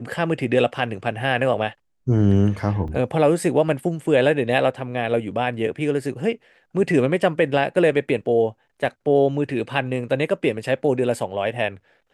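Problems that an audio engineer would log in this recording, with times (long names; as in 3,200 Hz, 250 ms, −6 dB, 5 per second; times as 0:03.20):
0:02.88: drop-out 4.4 ms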